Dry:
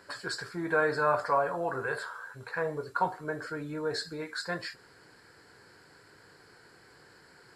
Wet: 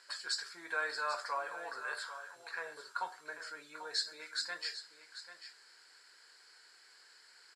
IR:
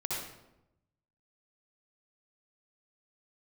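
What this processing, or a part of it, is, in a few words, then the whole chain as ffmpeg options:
piezo pickup straight into a mixer: -af "highpass=frequency=330:poles=1,lowpass=5900,aderivative,aecho=1:1:791:0.251,volume=7.5dB"

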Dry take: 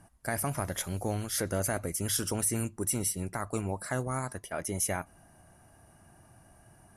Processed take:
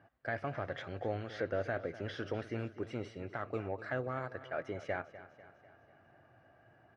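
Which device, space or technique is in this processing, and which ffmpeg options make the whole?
overdrive pedal into a guitar cabinet: -filter_complex "[0:a]asplit=2[link_01][link_02];[link_02]highpass=frequency=720:poles=1,volume=11dB,asoftclip=type=tanh:threshold=-17dB[link_03];[link_01][link_03]amix=inputs=2:normalize=0,lowpass=frequency=1200:poles=1,volume=-6dB,highpass=97,equalizer=frequency=110:width_type=q:width=4:gain=4,equalizer=frequency=190:width_type=q:width=4:gain=-7,equalizer=frequency=510:width_type=q:width=4:gain=4,equalizer=frequency=960:width_type=q:width=4:gain=-9,equalizer=frequency=1700:width_type=q:width=4:gain=3,lowpass=frequency=4100:width=0.5412,lowpass=frequency=4100:width=1.3066,asettb=1/sr,asplit=3[link_04][link_05][link_06];[link_04]atrim=end=1.394[link_07];[link_05]atrim=start=1.39:end=2.6,asetpts=PTS-STARTPTS,afade=type=in:duration=0.004:curve=qsin,afade=type=out:start_time=1.206:duration=0.004:curve=qsin,bandreject=frequency=7700:width=5.3[link_08];[link_06]atrim=start=2.596[link_09];[link_07][link_08]acrossfade=duration=0.004:curve1=hsin:curve2=qsin[link_10];[link_10][link_09]acrossfade=duration=0.004:curve1=qsin:curve2=hsin,aecho=1:1:248|496|744|992|1240:0.168|0.0873|0.0454|0.0236|0.0123,volume=-4dB"

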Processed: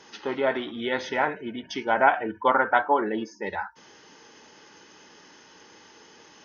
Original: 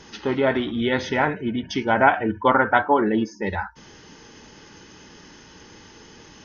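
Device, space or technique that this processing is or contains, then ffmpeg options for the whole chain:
filter by subtraction: -filter_complex "[0:a]asplit=2[link_01][link_02];[link_02]lowpass=640,volume=-1[link_03];[link_01][link_03]amix=inputs=2:normalize=0,volume=-4.5dB"

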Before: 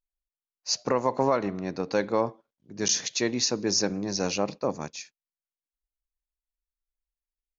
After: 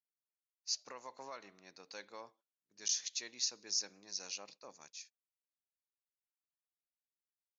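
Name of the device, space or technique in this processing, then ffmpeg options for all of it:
piezo pickup straight into a mixer: -af "agate=range=-9dB:threshold=-45dB:ratio=16:detection=peak,lowpass=6300,aderivative,lowshelf=frequency=220:gain=4,volume=-5dB"

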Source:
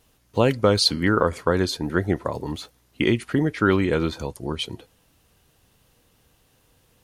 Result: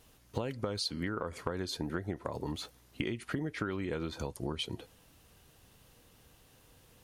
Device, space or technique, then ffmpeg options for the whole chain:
serial compression, leveller first: -af "acompressor=threshold=-22dB:ratio=2.5,acompressor=threshold=-33dB:ratio=5"

